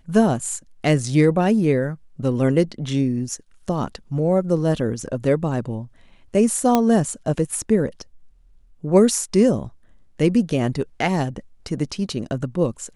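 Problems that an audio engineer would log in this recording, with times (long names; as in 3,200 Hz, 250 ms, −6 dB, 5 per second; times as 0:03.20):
0:06.75: click −4 dBFS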